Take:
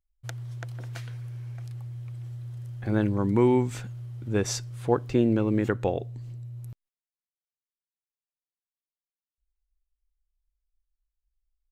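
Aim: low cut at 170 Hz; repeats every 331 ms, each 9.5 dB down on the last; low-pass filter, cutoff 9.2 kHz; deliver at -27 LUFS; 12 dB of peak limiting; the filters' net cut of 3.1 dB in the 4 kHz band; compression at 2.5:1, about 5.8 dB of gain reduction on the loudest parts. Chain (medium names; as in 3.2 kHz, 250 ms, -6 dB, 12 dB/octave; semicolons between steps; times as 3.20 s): high-pass 170 Hz; low-pass 9.2 kHz; peaking EQ 4 kHz -4 dB; compression 2.5:1, threshold -26 dBFS; peak limiter -26 dBFS; feedback delay 331 ms, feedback 33%, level -9.5 dB; trim +12 dB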